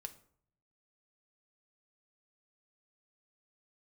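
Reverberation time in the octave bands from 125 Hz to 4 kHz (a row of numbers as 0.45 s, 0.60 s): 1.0 s, 0.85 s, 0.60 s, 0.55 s, 0.45 s, 0.35 s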